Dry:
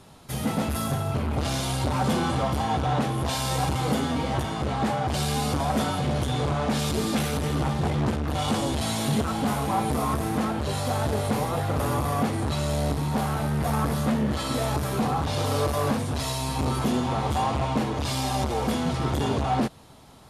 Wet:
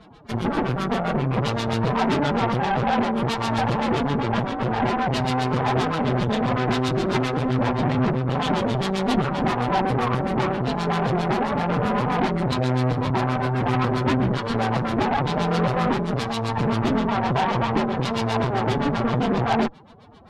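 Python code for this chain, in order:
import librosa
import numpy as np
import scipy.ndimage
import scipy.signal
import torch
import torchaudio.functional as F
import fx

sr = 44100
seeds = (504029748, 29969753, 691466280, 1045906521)

y = fx.filter_lfo_lowpass(x, sr, shape='sine', hz=7.6, low_hz=600.0, high_hz=4200.0, q=0.96)
y = fx.pitch_keep_formants(y, sr, semitones=9.5)
y = fx.cheby_harmonics(y, sr, harmonics=(8,), levels_db=(-17,), full_scale_db=-12.0)
y = F.gain(torch.from_numpy(y), 3.0).numpy()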